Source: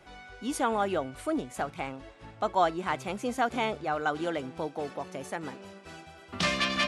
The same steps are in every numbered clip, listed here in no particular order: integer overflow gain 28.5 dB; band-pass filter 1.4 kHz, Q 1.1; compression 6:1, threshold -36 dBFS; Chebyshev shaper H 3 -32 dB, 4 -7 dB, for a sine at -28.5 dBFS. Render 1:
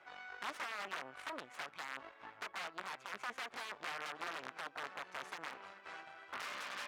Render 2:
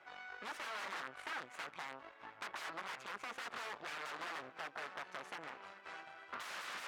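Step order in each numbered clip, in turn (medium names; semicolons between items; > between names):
compression > Chebyshev shaper > integer overflow > band-pass filter; integer overflow > Chebyshev shaper > compression > band-pass filter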